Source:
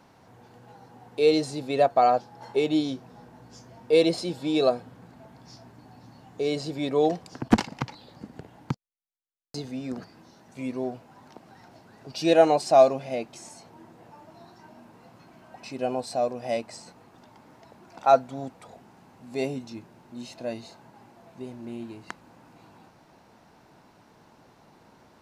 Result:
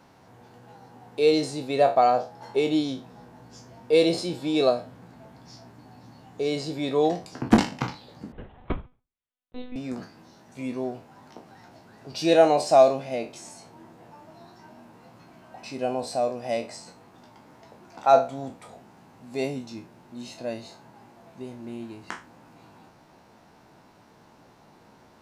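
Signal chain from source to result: spectral sustain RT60 0.32 s; 8.32–9.76 s: monotone LPC vocoder at 8 kHz 250 Hz

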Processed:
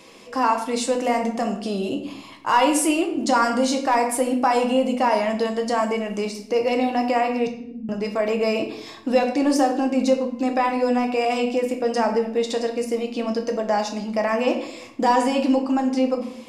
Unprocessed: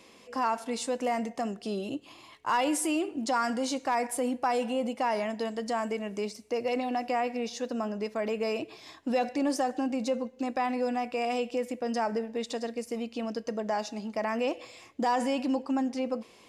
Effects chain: 7.47–7.89 s: inverse Chebyshev low-pass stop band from 550 Hz, stop band 50 dB; simulated room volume 140 m³, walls mixed, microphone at 0.61 m; trim +7 dB

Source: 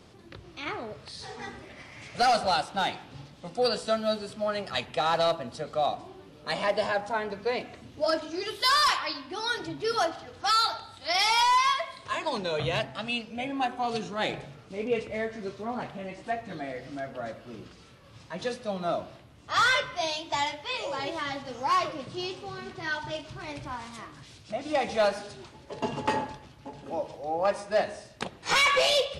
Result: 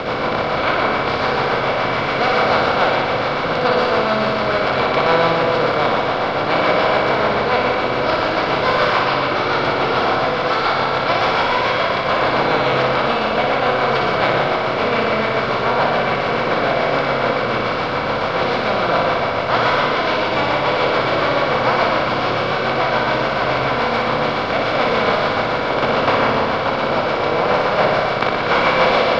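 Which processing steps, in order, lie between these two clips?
spectral levelling over time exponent 0.2; treble shelf 2.3 kHz +9.5 dB; rotary cabinet horn 7 Hz; tape spacing loss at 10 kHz 45 dB; flutter echo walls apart 10.3 m, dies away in 0.93 s; on a send at -9 dB: reverberation RT60 1.3 s, pre-delay 113 ms; on the sum: trim +1.5 dB

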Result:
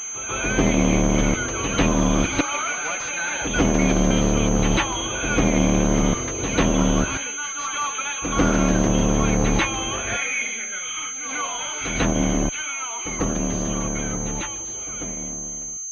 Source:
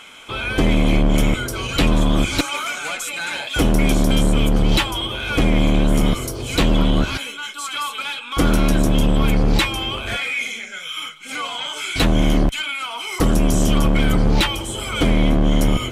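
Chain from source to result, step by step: fade out at the end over 4.72 s; bass shelf 110 Hz -7.5 dB; reverse echo 145 ms -9.5 dB; class-D stage that switches slowly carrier 6.3 kHz

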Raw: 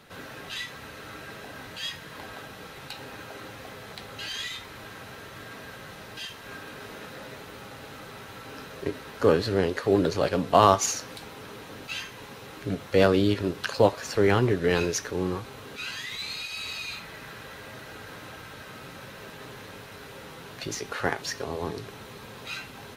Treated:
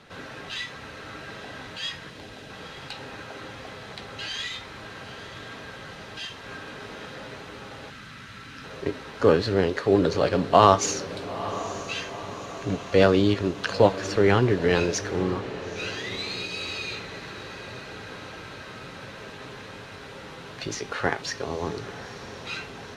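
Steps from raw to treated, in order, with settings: 15.22–16.17 s: median filter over 5 samples; low-pass 6.7 kHz 12 dB/octave; 2.10–2.50 s: peaking EQ 1.2 kHz -10.5 dB 1.5 oct; 7.90–8.64 s: Chebyshev band-stop 230–1400 Hz, order 2; echo that smears into a reverb 919 ms, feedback 54%, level -14 dB; trim +2 dB

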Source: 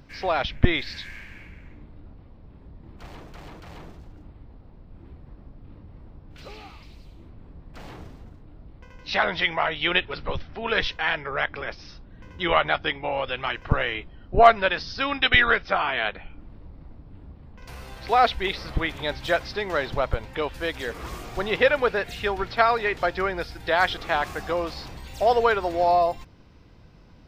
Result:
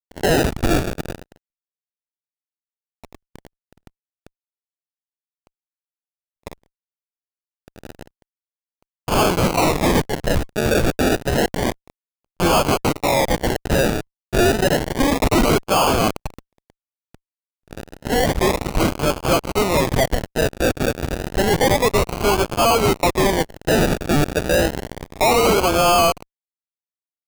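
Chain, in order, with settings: fuzz box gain 35 dB, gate -34 dBFS; 17.86–18.33 s: peaking EQ 170 Hz -12 dB 2.3 oct; decimation with a swept rate 33×, swing 60% 0.3 Hz

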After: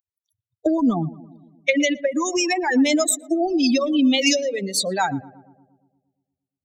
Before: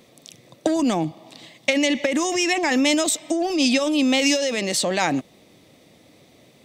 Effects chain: expander on every frequency bin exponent 3; 2.39–3.84 s: dynamic bell 3 kHz, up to -6 dB, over -43 dBFS, Q 1.3; filtered feedback delay 116 ms, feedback 64%, low-pass 1.2 kHz, level -18.5 dB; trim +6.5 dB

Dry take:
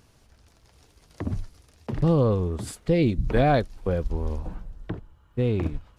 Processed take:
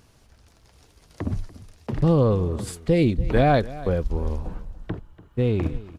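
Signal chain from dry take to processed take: delay 289 ms -18.5 dB; trim +2 dB

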